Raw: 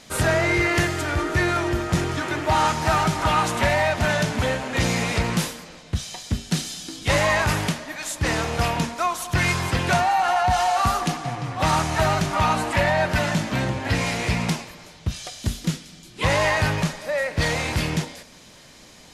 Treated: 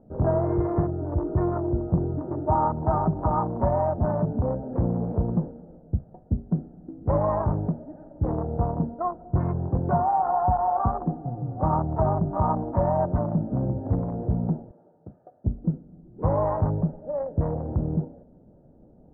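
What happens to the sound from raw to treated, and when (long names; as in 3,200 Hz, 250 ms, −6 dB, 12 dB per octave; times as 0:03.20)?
0:14.71–0:15.45: meter weighting curve A
whole clip: adaptive Wiener filter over 41 samples; Butterworth low-pass 1,100 Hz 36 dB per octave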